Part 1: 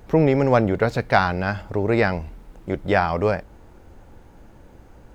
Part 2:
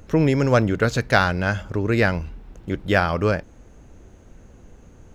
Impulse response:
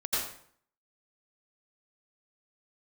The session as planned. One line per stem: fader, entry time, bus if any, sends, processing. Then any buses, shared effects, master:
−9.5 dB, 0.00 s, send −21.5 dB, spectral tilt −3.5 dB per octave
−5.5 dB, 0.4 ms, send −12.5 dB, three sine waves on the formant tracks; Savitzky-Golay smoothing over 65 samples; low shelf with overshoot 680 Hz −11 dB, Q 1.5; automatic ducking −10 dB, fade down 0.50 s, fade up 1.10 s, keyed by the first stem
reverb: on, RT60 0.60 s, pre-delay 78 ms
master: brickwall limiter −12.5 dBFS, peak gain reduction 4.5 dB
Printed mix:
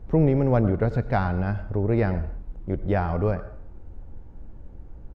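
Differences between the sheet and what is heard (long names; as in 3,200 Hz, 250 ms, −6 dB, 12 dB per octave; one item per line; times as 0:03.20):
stem 2 −5.5 dB → −14.0 dB
master: missing brickwall limiter −12.5 dBFS, peak gain reduction 4.5 dB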